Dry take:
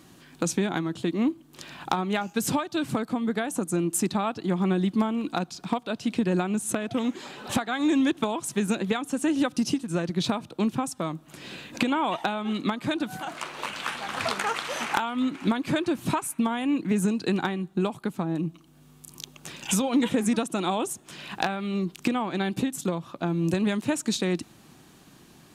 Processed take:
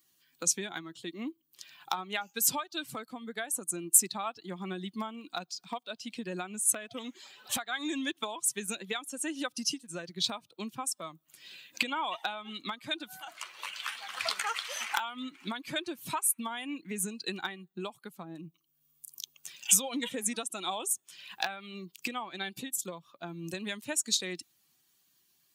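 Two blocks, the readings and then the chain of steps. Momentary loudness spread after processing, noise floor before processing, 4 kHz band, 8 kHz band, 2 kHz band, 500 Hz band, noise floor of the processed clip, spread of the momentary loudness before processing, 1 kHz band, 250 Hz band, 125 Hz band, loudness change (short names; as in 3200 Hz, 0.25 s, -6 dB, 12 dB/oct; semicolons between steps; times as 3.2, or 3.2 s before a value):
16 LU, -54 dBFS, -0.5 dB, +4.5 dB, -4.5 dB, -11.5 dB, -72 dBFS, 8 LU, -7.5 dB, -15.0 dB, -17.0 dB, -5.5 dB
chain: per-bin expansion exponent 1.5; tilt +4 dB/oct; gain -4 dB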